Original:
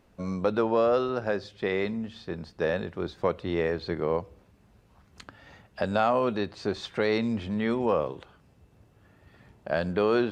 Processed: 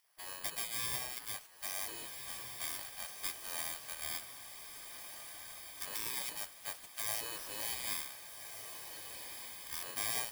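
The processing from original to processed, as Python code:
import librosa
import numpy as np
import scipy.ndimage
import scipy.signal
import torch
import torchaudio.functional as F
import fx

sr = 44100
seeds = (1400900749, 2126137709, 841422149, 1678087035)

y = fx.bit_reversed(x, sr, seeds[0], block=32)
y = fx.spec_gate(y, sr, threshold_db=-20, keep='weak')
y = fx.echo_diffused(y, sr, ms=1584, feedback_pct=50, wet_db=-7)
y = F.gain(torch.from_numpy(y), -3.5).numpy()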